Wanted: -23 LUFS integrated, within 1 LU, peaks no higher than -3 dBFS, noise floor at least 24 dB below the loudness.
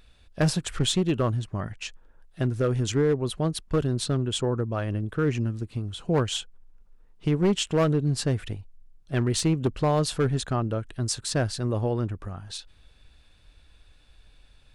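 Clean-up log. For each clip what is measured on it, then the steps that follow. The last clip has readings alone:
clipped 1.2%; flat tops at -16.5 dBFS; loudness -26.5 LUFS; peak -16.5 dBFS; loudness target -23.0 LUFS
-> clip repair -16.5 dBFS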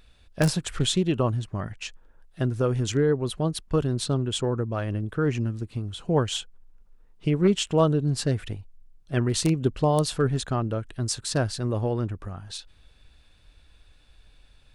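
clipped 0.0%; loudness -26.0 LUFS; peak -7.5 dBFS; loudness target -23.0 LUFS
-> gain +3 dB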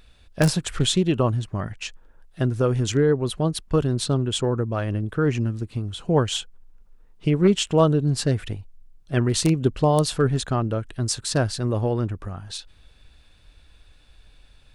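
loudness -23.0 LUFS; peak -4.5 dBFS; noise floor -54 dBFS

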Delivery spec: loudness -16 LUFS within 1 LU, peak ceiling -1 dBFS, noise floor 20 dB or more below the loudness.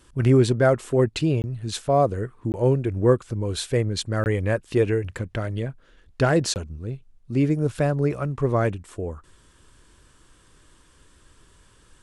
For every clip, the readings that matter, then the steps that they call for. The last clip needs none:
dropouts 4; longest dropout 19 ms; loudness -23.5 LUFS; peak -6.5 dBFS; loudness target -16.0 LUFS
-> interpolate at 1.42/2.52/4.24/6.54, 19 ms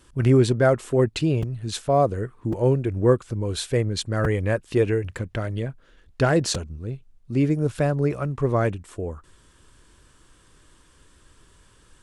dropouts 0; loudness -23.5 LUFS; peak -6.5 dBFS; loudness target -16.0 LUFS
-> gain +7.5 dB; limiter -1 dBFS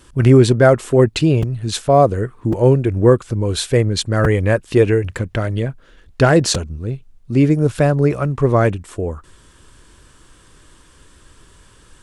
loudness -16.0 LUFS; peak -1.0 dBFS; noise floor -49 dBFS

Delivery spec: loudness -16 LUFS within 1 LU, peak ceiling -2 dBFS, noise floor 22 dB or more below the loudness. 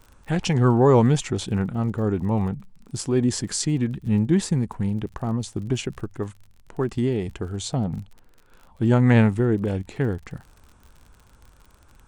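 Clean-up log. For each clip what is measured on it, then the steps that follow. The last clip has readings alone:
ticks 40/s; loudness -23.0 LUFS; peak -5.0 dBFS; loudness target -16.0 LUFS
-> de-click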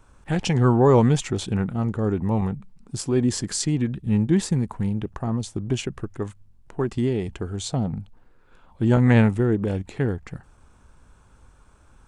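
ticks 0.17/s; loudness -23.0 LUFS; peak -5.0 dBFS; loudness target -16.0 LUFS
-> gain +7 dB; limiter -2 dBFS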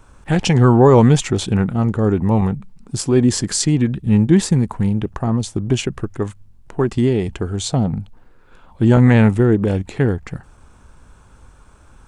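loudness -16.5 LUFS; peak -2.0 dBFS; noise floor -48 dBFS

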